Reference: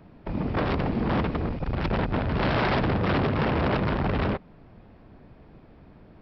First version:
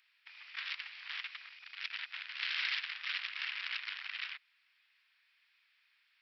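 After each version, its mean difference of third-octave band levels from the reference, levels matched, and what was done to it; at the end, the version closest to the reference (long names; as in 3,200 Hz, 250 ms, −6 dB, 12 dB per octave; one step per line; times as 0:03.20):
20.5 dB: inverse Chebyshev high-pass filter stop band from 470 Hz, stop band 70 dB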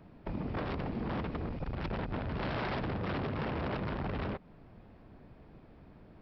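2.0 dB: downward compressor 4 to 1, threshold −29 dBFS, peak gain reduction 7 dB
level −4.5 dB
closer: second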